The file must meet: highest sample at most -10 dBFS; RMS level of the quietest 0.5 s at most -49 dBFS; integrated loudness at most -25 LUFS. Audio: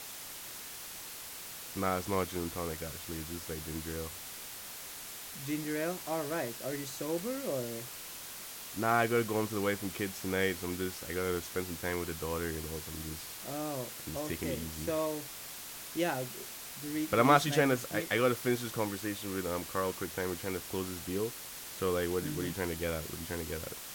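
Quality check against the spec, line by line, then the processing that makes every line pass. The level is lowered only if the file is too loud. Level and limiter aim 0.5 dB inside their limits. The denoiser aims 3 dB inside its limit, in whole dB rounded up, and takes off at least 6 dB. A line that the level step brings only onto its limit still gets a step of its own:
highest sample -11.5 dBFS: OK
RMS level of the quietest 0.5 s -45 dBFS: fail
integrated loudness -35.0 LUFS: OK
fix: denoiser 7 dB, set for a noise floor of -45 dBFS

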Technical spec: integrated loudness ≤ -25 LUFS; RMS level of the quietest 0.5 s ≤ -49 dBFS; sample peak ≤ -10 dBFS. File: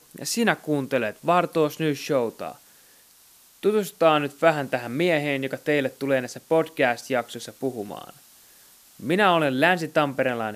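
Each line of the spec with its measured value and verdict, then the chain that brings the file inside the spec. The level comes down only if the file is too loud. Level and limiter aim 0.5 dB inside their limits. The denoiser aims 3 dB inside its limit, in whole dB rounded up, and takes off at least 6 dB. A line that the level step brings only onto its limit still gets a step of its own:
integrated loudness -23.5 LUFS: fail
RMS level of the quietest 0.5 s -55 dBFS: OK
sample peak -4.5 dBFS: fail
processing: gain -2 dB; limiter -10.5 dBFS

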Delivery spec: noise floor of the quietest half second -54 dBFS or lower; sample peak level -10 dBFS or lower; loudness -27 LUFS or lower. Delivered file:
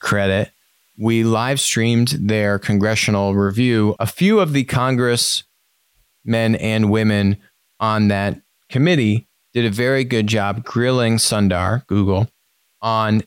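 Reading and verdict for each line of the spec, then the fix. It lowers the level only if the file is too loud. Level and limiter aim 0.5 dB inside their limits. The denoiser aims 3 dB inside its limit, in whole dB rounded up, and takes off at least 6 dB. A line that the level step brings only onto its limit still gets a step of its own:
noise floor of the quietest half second -64 dBFS: OK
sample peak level -5.5 dBFS: fail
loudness -17.5 LUFS: fail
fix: gain -10 dB

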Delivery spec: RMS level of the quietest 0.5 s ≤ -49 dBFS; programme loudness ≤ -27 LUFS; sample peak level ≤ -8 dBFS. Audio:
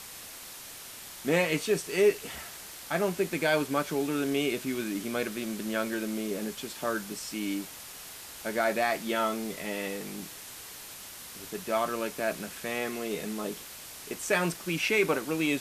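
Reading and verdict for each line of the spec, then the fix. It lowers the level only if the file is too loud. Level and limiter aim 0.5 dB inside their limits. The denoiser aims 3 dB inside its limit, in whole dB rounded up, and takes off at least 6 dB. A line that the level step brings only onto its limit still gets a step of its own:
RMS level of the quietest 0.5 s -45 dBFS: fail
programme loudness -30.5 LUFS: OK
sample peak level -11.5 dBFS: OK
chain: denoiser 7 dB, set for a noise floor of -45 dBFS

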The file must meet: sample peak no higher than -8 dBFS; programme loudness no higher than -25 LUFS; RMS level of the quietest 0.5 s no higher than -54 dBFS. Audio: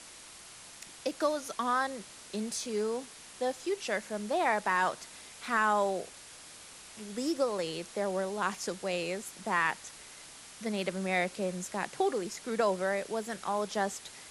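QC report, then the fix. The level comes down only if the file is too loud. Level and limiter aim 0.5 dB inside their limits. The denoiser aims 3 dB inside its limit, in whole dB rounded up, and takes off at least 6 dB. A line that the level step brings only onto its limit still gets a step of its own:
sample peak -16.0 dBFS: OK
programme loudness -32.5 LUFS: OK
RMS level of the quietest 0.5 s -50 dBFS: fail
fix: denoiser 7 dB, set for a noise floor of -50 dBFS

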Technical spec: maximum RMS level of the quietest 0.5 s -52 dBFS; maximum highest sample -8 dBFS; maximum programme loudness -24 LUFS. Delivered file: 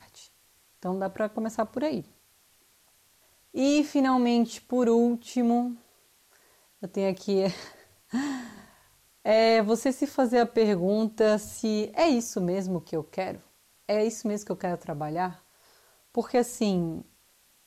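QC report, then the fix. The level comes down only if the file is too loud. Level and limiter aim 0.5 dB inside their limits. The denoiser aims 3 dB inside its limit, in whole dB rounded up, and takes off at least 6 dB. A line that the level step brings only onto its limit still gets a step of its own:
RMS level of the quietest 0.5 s -63 dBFS: OK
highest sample -13.0 dBFS: OK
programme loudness -27.0 LUFS: OK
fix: none

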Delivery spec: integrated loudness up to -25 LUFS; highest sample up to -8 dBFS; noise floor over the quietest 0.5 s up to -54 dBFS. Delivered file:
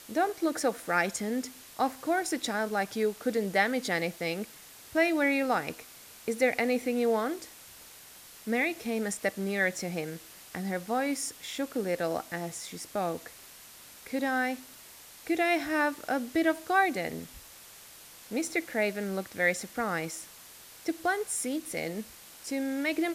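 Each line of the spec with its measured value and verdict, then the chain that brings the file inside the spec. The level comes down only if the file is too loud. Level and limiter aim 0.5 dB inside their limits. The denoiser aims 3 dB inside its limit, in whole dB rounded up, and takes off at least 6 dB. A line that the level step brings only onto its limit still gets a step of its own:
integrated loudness -30.5 LUFS: OK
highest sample -12.0 dBFS: OK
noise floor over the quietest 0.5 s -51 dBFS: fail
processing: denoiser 6 dB, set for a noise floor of -51 dBFS

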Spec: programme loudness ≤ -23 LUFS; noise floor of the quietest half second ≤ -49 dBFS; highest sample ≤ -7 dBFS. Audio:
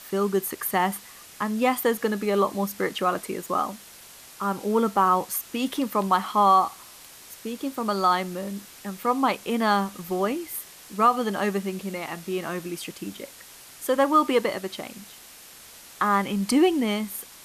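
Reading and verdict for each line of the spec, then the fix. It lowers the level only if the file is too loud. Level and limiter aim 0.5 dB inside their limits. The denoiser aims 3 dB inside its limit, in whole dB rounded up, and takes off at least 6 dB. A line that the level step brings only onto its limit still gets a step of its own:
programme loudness -25.0 LUFS: OK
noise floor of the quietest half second -47 dBFS: fail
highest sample -8.5 dBFS: OK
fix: denoiser 6 dB, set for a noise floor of -47 dBFS

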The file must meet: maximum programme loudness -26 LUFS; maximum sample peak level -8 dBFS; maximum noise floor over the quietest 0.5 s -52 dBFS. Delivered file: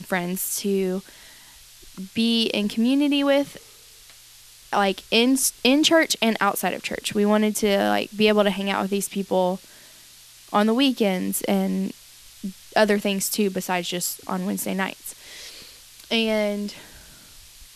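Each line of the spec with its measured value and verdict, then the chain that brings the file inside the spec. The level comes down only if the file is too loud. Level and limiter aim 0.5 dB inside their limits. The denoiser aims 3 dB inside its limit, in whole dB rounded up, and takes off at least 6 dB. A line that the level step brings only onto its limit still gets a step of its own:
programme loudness -22.0 LUFS: fail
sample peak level -4.0 dBFS: fail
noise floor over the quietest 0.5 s -48 dBFS: fail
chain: gain -4.5 dB

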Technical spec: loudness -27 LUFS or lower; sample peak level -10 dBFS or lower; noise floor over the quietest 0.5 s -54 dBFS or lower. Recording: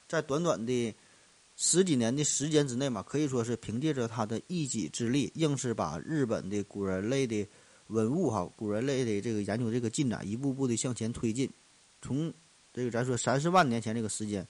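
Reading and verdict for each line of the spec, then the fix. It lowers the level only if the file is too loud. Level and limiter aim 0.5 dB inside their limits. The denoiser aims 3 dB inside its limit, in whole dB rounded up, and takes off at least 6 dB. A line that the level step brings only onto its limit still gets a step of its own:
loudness -31.0 LUFS: OK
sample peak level -13.5 dBFS: OK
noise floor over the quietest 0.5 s -62 dBFS: OK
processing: none

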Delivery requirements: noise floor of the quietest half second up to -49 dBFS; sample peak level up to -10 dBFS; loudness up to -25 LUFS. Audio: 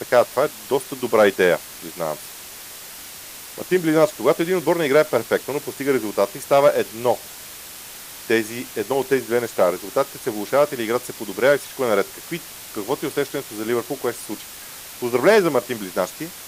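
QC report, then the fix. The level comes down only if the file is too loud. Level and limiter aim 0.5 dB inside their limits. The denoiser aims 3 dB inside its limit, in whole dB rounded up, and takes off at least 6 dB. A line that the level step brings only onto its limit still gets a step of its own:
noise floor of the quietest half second -38 dBFS: fail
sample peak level -4.0 dBFS: fail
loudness -21.0 LUFS: fail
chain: denoiser 10 dB, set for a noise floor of -38 dBFS; gain -4.5 dB; limiter -10.5 dBFS

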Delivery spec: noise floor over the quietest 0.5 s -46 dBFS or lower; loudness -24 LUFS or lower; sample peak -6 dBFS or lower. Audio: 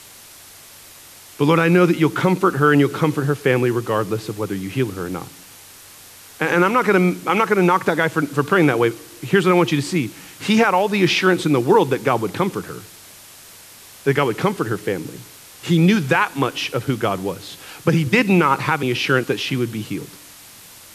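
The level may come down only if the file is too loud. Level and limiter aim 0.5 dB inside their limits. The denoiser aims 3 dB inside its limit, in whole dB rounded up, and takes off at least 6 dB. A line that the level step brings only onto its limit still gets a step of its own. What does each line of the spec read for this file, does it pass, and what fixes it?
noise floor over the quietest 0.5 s -43 dBFS: fail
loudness -18.5 LUFS: fail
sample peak -3.5 dBFS: fail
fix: gain -6 dB

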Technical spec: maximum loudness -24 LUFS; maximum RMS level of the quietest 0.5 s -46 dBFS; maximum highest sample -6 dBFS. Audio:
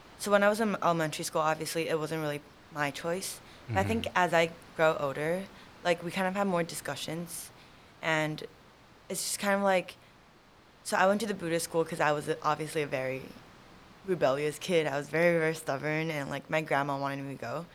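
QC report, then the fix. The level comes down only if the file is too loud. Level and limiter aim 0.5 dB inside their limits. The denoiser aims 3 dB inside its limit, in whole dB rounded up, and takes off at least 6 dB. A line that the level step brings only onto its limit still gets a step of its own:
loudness -30.5 LUFS: OK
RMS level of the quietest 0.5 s -58 dBFS: OK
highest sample -10.0 dBFS: OK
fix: none

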